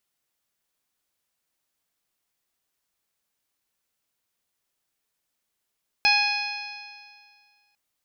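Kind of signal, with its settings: stretched partials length 1.70 s, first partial 824 Hz, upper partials -4/5.5/-11/-1/1/-16.5 dB, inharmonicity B 0.002, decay 1.93 s, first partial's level -23 dB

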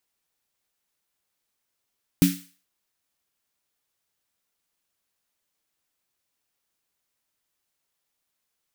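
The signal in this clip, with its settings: snare drum length 0.43 s, tones 180 Hz, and 280 Hz, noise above 1600 Hz, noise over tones -10.5 dB, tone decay 0.30 s, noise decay 0.44 s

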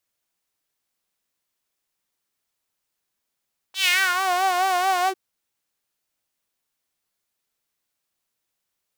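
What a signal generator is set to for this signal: synth patch with vibrato F#5, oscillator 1 saw, oscillator 2 level -14.5 dB, sub -1.5 dB, noise -17 dB, filter highpass, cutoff 310 Hz, Q 3.1, filter envelope 3.5 oct, filter decay 0.54 s, attack 0.113 s, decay 0.30 s, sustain -8 dB, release 0.06 s, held 1.34 s, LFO 4.6 Hz, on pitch 76 cents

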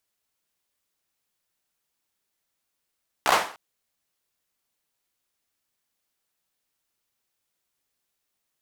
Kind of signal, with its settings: hand clap length 0.30 s, bursts 5, apart 15 ms, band 890 Hz, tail 0.42 s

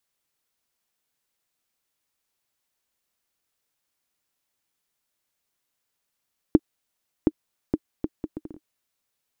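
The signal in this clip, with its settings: bouncing ball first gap 0.72 s, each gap 0.65, 310 Hz, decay 44 ms -3 dBFS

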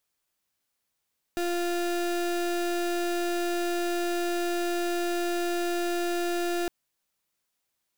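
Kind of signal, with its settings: pulse 348 Hz, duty 32% -28 dBFS 5.31 s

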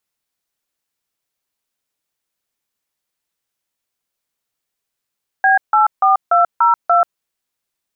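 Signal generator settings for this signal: DTMF "B84202", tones 0.136 s, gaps 0.155 s, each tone -11.5 dBFS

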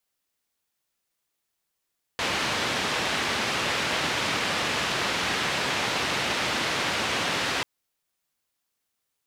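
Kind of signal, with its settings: noise band 90–3200 Hz, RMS -27 dBFS 5.44 s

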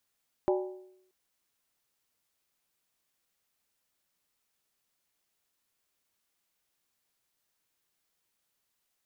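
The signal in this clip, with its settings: skin hit, lowest mode 371 Hz, decay 0.77 s, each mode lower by 4.5 dB, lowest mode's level -22.5 dB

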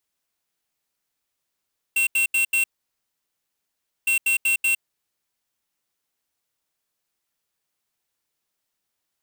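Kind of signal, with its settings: beep pattern square 2720 Hz, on 0.11 s, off 0.08 s, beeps 4, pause 1.43 s, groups 2, -20 dBFS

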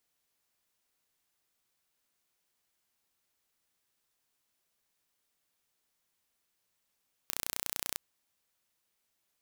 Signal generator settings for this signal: pulse train 30.3/s, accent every 0, -6.5 dBFS 0.66 s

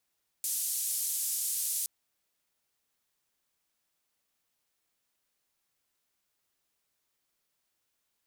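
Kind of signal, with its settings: noise band 7800–12000 Hz, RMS -32.5 dBFS 1.42 s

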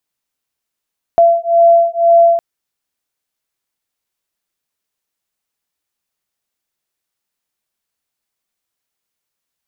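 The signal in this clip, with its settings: beating tones 677 Hz, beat 2 Hz, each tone -10 dBFS 1.21 s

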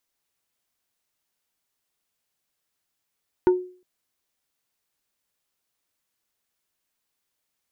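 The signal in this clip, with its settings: wood hit plate, length 0.36 s, lowest mode 364 Hz, decay 0.42 s, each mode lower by 10 dB, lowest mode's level -11 dB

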